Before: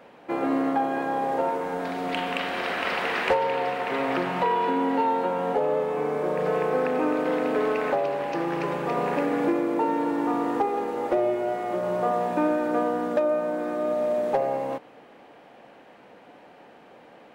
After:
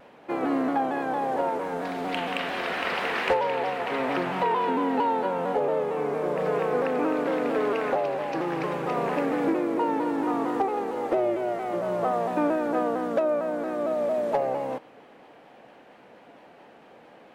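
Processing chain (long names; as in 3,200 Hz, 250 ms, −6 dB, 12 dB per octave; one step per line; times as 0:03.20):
pitch modulation by a square or saw wave saw down 4.4 Hz, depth 100 cents
level −1 dB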